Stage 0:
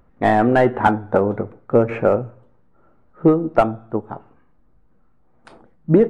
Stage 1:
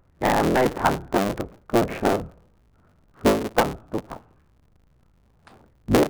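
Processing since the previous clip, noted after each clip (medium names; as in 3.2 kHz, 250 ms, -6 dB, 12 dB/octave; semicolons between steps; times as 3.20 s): cycle switcher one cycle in 3, inverted; trim -5 dB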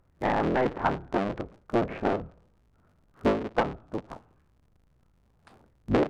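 low-pass that closes with the level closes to 2.9 kHz, closed at -20.5 dBFS; trim -5.5 dB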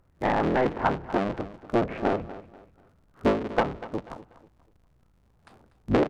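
feedback delay 243 ms, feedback 31%, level -16 dB; trim +1.5 dB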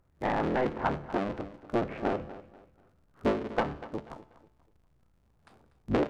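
feedback comb 73 Hz, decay 0.59 s, harmonics all, mix 50%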